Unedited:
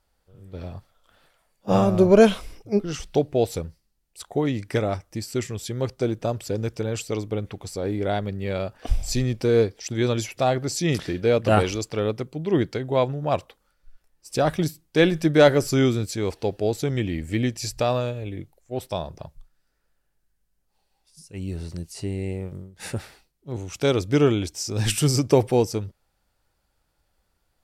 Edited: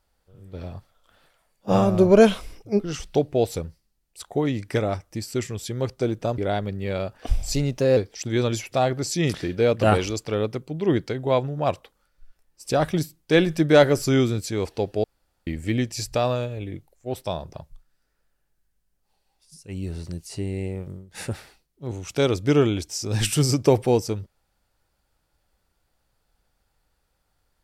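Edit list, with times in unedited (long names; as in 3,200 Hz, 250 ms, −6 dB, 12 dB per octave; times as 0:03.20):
0:06.38–0:07.98: remove
0:09.14–0:09.62: play speed 112%
0:16.69–0:17.12: fill with room tone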